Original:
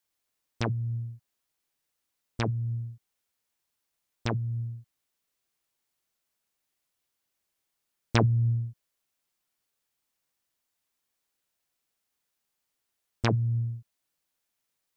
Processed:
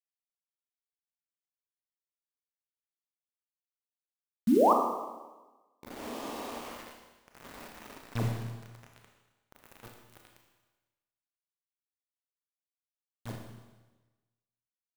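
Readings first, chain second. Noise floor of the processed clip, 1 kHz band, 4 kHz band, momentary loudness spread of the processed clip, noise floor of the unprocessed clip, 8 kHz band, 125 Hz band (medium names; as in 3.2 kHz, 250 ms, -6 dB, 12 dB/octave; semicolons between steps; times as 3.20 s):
under -85 dBFS, +7.5 dB, -7.5 dB, 24 LU, -82 dBFS, no reading, -13.5 dB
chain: zero-crossing glitches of -24 dBFS; gate -19 dBFS, range -50 dB; in parallel at +2.5 dB: compressor with a negative ratio -37 dBFS, ratio -0.5; on the sum: bass shelf 370 Hz +7 dB; painted sound rise, 4.47–4.73 s, 200–1300 Hz -14 dBFS; band-stop 360 Hz, Q 12; on a send: echo that smears into a reverb 1709 ms, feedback 54%, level -15 dB; on the sum: bit crusher 6-bit; Schroeder reverb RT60 1.2 s, combs from 26 ms, DRR 1.5 dB; trim -8.5 dB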